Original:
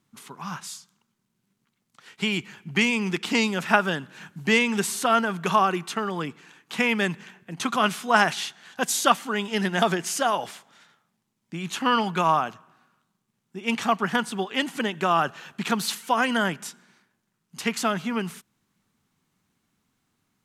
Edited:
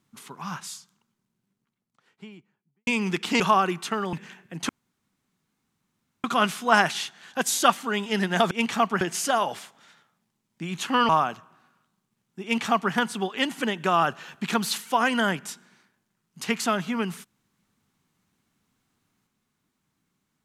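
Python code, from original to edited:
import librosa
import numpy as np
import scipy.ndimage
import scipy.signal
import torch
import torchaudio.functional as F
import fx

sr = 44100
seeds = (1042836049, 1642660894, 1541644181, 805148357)

y = fx.studio_fade_out(x, sr, start_s=0.61, length_s=2.26)
y = fx.edit(y, sr, fx.cut(start_s=3.4, length_s=2.05),
    fx.cut(start_s=6.18, length_s=0.92),
    fx.insert_room_tone(at_s=7.66, length_s=1.55),
    fx.cut(start_s=12.01, length_s=0.25),
    fx.duplicate(start_s=13.6, length_s=0.5, to_s=9.93), tone=tone)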